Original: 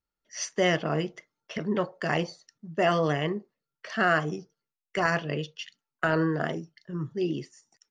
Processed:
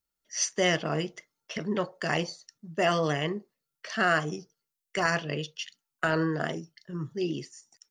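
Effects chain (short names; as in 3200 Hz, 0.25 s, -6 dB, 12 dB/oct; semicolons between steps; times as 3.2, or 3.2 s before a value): high shelf 4200 Hz +11.5 dB; gain -2 dB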